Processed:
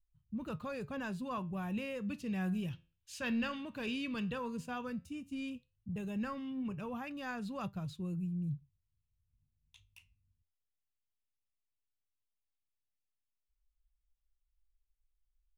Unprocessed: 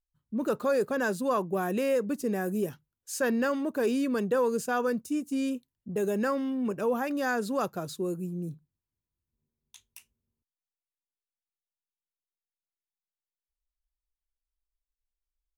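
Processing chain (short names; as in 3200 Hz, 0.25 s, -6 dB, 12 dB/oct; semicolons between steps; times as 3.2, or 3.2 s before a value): EQ curve 110 Hz 0 dB, 390 Hz -29 dB, 660 Hz -24 dB, 1000 Hz -19 dB, 1600 Hz -23 dB, 2700 Hz -12 dB, 5700 Hz -25 dB, 13000 Hz -30 dB; flange 0.13 Hz, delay 5 ms, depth 9.1 ms, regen +81%; 2.08–4.38 bell 3400 Hz +8 dB 1.7 oct; gain +14 dB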